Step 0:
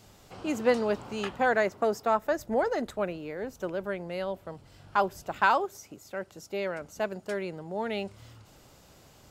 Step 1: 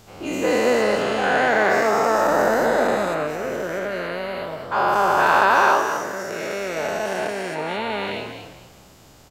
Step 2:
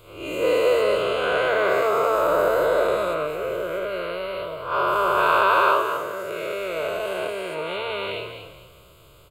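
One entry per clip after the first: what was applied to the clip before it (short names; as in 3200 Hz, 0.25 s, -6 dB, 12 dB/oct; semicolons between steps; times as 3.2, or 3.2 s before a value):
spectral dilation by 0.48 s; frequency-shifting echo 0.215 s, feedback 30%, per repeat +68 Hz, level -8.5 dB; ending taper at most 140 dB/s
spectral swells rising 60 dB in 0.45 s; fixed phaser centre 1200 Hz, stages 8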